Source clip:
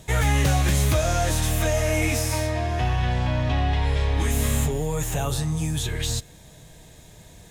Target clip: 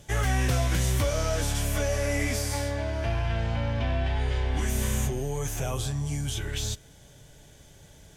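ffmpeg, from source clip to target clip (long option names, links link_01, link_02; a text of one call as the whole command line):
ffmpeg -i in.wav -af "asetrate=40517,aresample=44100,volume=-4.5dB" out.wav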